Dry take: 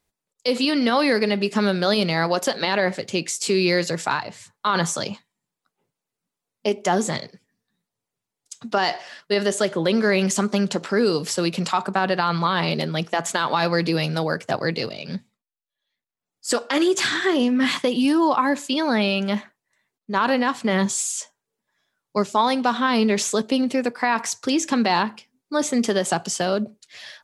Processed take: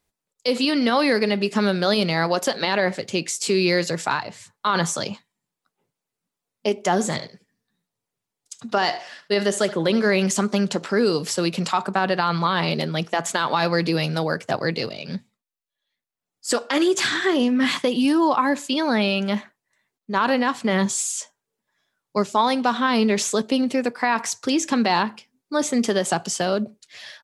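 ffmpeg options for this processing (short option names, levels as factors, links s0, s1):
-filter_complex "[0:a]asplit=3[s0][s1][s2];[s0]afade=t=out:st=6.99:d=0.02[s3];[s1]aecho=1:1:74:0.168,afade=t=in:st=6.99:d=0.02,afade=t=out:st=10.07:d=0.02[s4];[s2]afade=t=in:st=10.07:d=0.02[s5];[s3][s4][s5]amix=inputs=3:normalize=0"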